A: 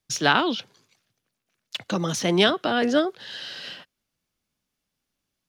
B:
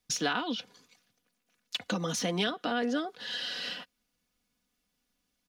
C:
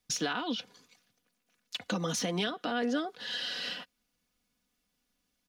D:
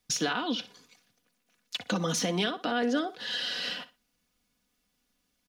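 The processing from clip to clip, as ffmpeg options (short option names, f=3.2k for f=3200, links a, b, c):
-af "aecho=1:1:4.1:0.63,acompressor=threshold=-31dB:ratio=3"
-af "alimiter=limit=-21dB:level=0:latency=1:release=85"
-af "aecho=1:1:61|122:0.158|0.0349,volume=3dB"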